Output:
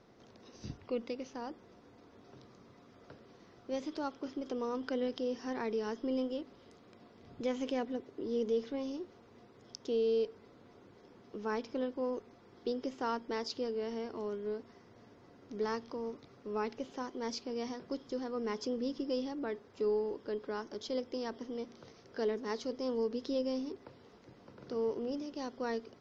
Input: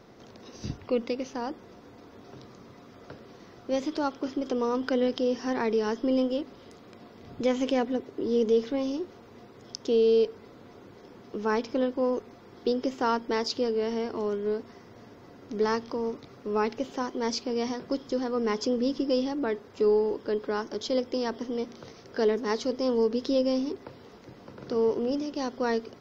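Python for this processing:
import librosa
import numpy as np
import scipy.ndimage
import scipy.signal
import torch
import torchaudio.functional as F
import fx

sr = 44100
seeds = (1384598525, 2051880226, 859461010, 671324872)

y = scipy.signal.sosfilt(scipy.signal.butter(2, 9400.0, 'lowpass', fs=sr, output='sos'), x)
y = y * librosa.db_to_amplitude(-9.0)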